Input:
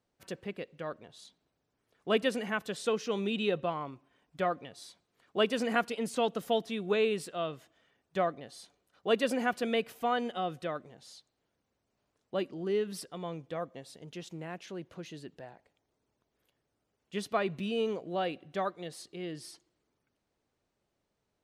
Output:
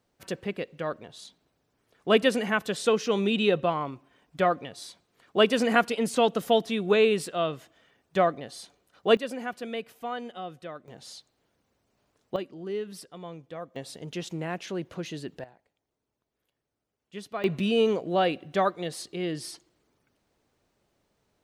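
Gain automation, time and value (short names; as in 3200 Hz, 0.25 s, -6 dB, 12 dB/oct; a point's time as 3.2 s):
+7 dB
from 9.17 s -4 dB
from 10.88 s +7.5 dB
from 12.36 s -2 dB
from 13.76 s +8.5 dB
from 15.44 s -4 dB
from 17.44 s +8.5 dB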